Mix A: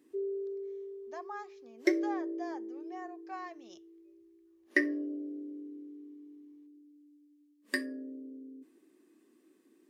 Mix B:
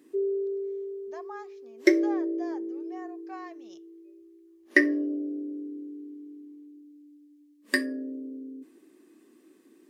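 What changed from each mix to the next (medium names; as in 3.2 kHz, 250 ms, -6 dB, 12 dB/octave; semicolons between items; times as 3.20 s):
background +7.5 dB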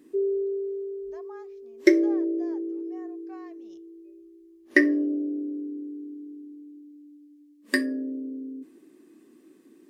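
speech -7.5 dB; master: remove high-pass 330 Hz 6 dB/octave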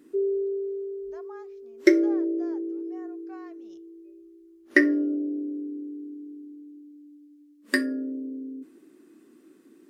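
master: remove band-stop 1.4 kHz, Q 6.2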